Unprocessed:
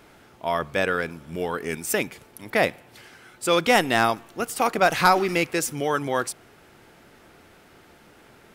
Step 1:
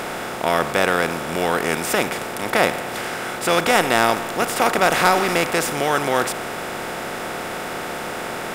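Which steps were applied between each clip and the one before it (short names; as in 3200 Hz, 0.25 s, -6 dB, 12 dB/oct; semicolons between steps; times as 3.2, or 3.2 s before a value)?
per-bin compression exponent 0.4; gain -2 dB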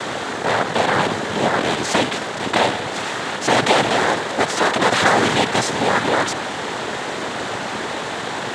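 in parallel at +3 dB: limiter -8 dBFS, peak gain reduction 7 dB; on the sum: noise vocoder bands 6; gain -4.5 dB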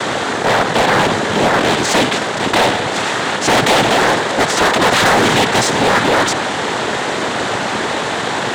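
hard clip -15.5 dBFS, distortion -10 dB; gain +7 dB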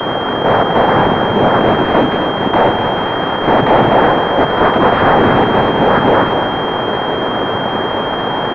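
echo 0.248 s -7.5 dB; pulse-width modulation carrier 3200 Hz; gain +3 dB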